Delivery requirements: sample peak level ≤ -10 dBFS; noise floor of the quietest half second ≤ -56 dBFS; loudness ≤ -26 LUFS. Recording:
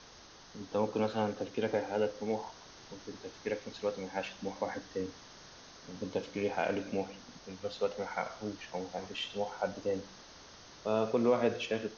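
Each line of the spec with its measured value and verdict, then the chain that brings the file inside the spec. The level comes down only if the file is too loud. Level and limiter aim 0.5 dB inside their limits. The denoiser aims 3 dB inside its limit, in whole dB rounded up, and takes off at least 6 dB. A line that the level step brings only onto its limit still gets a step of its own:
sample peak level -16.5 dBFS: OK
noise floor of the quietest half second -55 dBFS: fail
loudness -35.5 LUFS: OK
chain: denoiser 6 dB, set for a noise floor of -55 dBFS

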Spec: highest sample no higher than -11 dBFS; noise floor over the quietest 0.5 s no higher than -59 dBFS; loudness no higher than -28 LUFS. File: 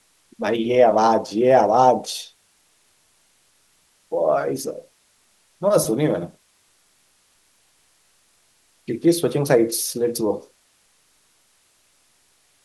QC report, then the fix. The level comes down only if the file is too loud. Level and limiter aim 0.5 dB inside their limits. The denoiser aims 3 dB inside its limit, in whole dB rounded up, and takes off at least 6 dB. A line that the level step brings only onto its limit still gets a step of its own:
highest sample -3.5 dBFS: fail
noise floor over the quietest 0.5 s -61 dBFS: OK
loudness -20.0 LUFS: fail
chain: gain -8.5 dB

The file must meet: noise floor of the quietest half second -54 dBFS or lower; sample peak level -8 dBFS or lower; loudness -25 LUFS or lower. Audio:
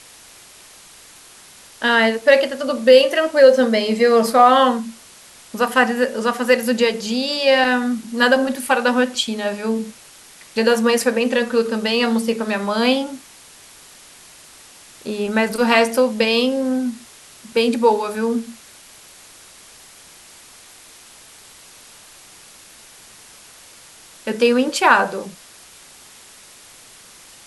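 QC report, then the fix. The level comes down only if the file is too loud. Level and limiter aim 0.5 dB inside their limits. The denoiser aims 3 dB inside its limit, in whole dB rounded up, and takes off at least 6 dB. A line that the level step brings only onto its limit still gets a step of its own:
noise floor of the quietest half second -45 dBFS: fail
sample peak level -1.5 dBFS: fail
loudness -17.5 LUFS: fail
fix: denoiser 6 dB, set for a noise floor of -45 dBFS; gain -8 dB

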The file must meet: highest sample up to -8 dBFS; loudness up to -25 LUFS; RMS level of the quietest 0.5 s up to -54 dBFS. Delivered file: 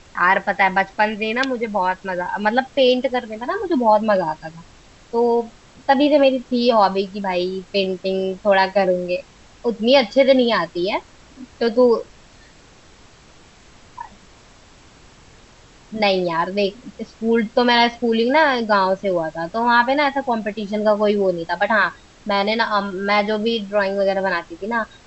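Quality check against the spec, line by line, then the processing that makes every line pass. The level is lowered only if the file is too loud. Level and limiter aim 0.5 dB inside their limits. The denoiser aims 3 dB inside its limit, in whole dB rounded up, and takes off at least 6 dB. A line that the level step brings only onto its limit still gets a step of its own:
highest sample -2.5 dBFS: fail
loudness -19.0 LUFS: fail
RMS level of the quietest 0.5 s -48 dBFS: fail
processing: gain -6.5 dB

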